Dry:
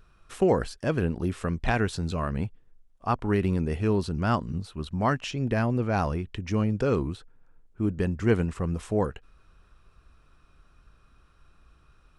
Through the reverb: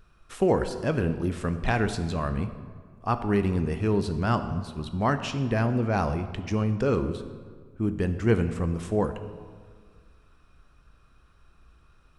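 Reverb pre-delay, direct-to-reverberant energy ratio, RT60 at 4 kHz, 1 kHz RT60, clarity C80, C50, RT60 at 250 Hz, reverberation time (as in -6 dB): 9 ms, 9.0 dB, 1.1 s, 1.7 s, 12.0 dB, 10.5 dB, 2.0 s, 1.8 s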